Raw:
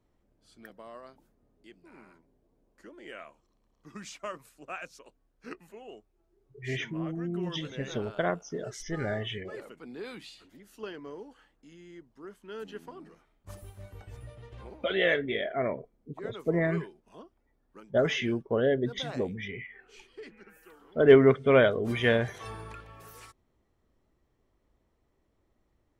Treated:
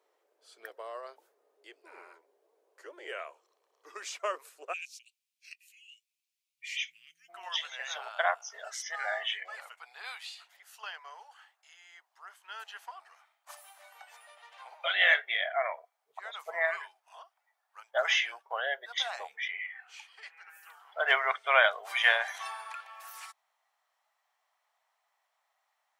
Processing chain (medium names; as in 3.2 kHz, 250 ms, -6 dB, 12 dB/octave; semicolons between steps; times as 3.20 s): elliptic high-pass 420 Hz, stop band 60 dB, from 4.72 s 2.4 kHz, from 7.28 s 730 Hz; trim +5.5 dB